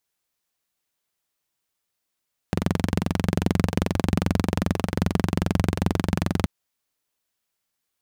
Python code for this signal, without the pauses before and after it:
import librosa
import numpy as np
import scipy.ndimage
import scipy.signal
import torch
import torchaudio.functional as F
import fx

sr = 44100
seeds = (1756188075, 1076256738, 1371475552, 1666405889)

y = fx.engine_single(sr, seeds[0], length_s=3.93, rpm=2700, resonances_hz=(94.0, 170.0))